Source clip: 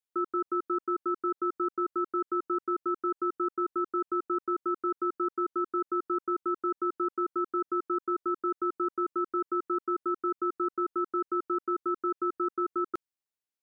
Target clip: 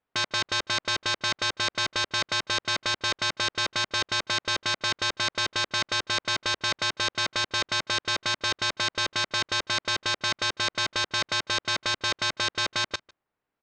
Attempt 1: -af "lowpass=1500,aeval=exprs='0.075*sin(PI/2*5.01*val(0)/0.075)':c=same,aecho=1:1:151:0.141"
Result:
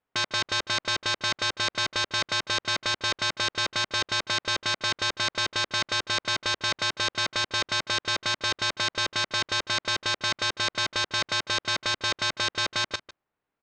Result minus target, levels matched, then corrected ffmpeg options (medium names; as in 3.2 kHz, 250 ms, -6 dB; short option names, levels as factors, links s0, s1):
echo-to-direct +8.5 dB
-af "lowpass=1500,aeval=exprs='0.075*sin(PI/2*5.01*val(0)/0.075)':c=same,aecho=1:1:151:0.0531"